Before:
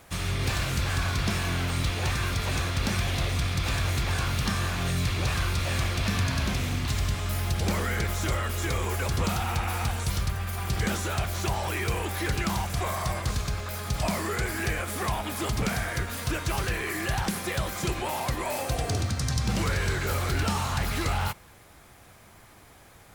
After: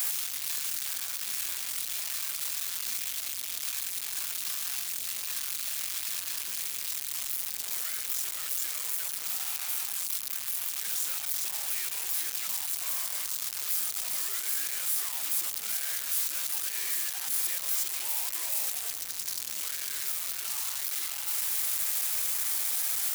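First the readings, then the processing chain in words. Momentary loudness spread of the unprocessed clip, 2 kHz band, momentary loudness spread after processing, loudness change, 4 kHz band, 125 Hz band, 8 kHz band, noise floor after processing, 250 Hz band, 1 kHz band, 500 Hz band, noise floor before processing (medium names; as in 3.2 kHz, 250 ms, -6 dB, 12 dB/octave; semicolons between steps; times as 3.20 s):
3 LU, -9.5 dB, 5 LU, -1.0 dB, -2.0 dB, under -35 dB, +6.0 dB, -37 dBFS, under -25 dB, -16.0 dB, -21.5 dB, -52 dBFS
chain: one-bit comparator; differentiator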